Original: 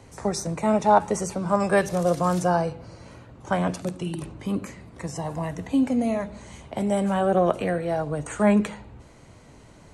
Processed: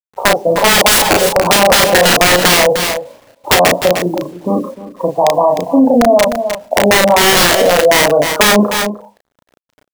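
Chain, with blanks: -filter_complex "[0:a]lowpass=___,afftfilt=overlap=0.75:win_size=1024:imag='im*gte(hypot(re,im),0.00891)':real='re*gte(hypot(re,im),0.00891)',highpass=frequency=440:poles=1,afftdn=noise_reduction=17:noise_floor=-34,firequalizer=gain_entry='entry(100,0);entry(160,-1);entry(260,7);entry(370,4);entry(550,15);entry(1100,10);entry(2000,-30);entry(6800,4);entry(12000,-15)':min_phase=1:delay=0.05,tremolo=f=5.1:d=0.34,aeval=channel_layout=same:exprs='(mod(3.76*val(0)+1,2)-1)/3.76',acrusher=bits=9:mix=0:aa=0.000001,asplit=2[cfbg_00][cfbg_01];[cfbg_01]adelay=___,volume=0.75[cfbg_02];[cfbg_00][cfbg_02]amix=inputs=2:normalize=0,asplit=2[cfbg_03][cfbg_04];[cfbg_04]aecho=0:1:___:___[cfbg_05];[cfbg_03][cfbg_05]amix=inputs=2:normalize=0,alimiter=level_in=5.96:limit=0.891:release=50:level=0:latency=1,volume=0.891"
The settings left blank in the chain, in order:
2400, 34, 305, 0.168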